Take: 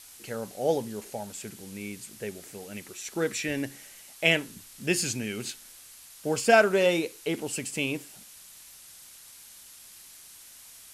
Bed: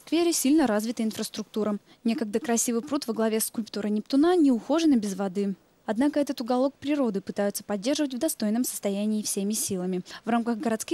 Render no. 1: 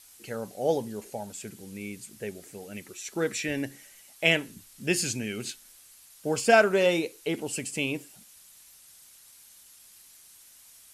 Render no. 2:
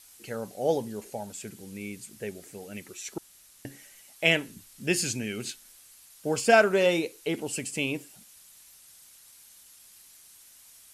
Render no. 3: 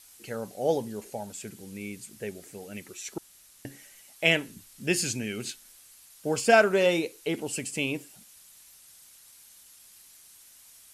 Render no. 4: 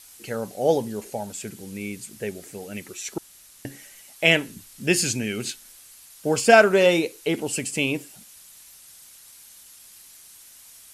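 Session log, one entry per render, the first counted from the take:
noise reduction 6 dB, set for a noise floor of -50 dBFS
3.18–3.65 s: room tone
no audible change
trim +5.5 dB; peak limiter -2 dBFS, peak gain reduction 1.5 dB

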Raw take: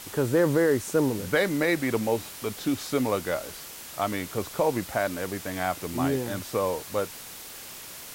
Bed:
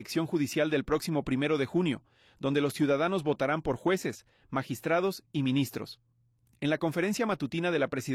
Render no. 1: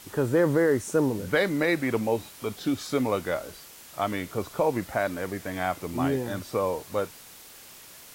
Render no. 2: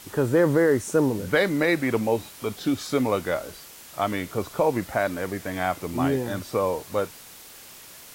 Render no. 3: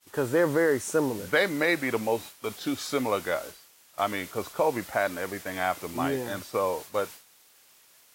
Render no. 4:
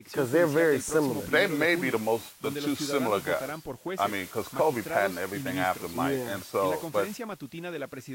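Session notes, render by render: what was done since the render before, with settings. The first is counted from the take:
noise print and reduce 6 dB
trim +2.5 dB
bass shelf 340 Hz -10 dB; expander -36 dBFS
add bed -7.5 dB

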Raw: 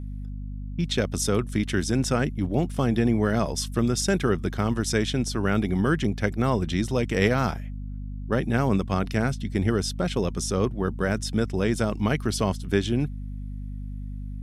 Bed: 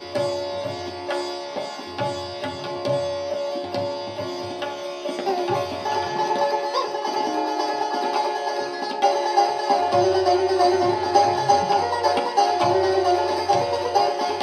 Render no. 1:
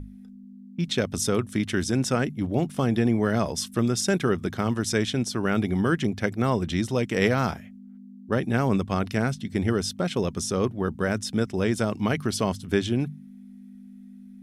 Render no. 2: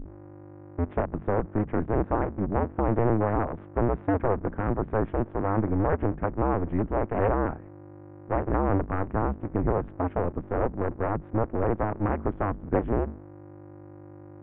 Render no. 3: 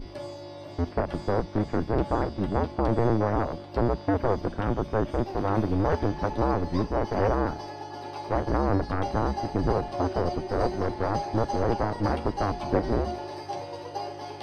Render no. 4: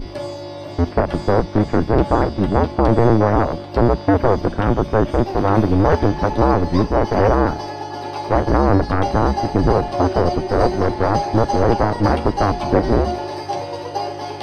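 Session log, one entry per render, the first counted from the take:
hum notches 50/100/150 Hz
cycle switcher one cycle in 2, inverted; Gaussian low-pass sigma 6.2 samples
add bed -15 dB
trim +10 dB; peak limiter -3 dBFS, peak gain reduction 2 dB

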